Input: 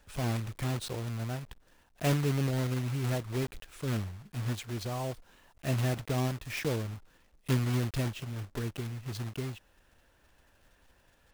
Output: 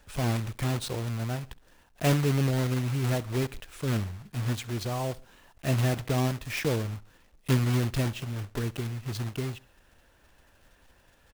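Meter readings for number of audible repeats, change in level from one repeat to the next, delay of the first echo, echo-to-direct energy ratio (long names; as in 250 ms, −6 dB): 2, −6.5 dB, 67 ms, −21.0 dB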